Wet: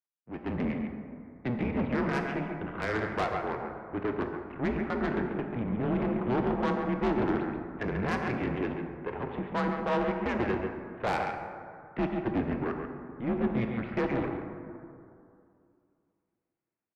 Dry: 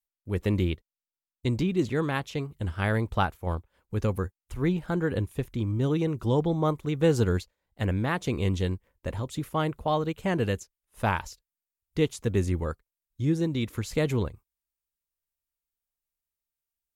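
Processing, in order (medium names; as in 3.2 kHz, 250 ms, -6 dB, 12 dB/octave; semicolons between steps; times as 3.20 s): delay 139 ms -8 dB; half-wave rectifier; mistuned SSB -120 Hz 250–2600 Hz; saturation -30 dBFS, distortion -10 dB; level rider gain up to 8 dB; on a send at -5 dB: reverberation RT60 2.5 s, pre-delay 18 ms; on the sum: trim -2 dB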